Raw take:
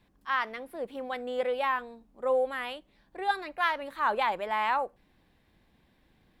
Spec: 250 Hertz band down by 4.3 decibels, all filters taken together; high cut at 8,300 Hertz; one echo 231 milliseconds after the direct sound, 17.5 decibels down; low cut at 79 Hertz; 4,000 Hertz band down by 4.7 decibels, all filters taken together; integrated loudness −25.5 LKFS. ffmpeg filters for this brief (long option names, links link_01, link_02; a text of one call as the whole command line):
ffmpeg -i in.wav -af "highpass=79,lowpass=8300,equalizer=frequency=250:width_type=o:gain=-5,equalizer=frequency=4000:width_type=o:gain=-6.5,aecho=1:1:231:0.133,volume=6dB" out.wav